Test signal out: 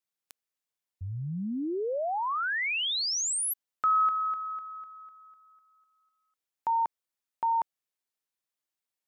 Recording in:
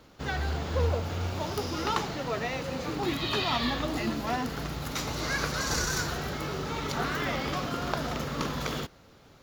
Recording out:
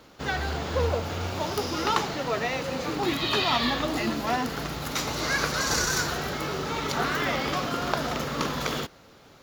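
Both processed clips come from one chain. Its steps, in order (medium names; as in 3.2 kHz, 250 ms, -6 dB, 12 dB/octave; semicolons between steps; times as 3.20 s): bass shelf 160 Hz -7.5 dB; trim +4.5 dB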